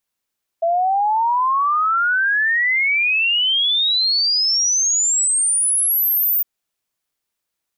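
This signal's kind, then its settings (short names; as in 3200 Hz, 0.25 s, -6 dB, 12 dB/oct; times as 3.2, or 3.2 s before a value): log sweep 660 Hz -> 15000 Hz 5.81 s -14.5 dBFS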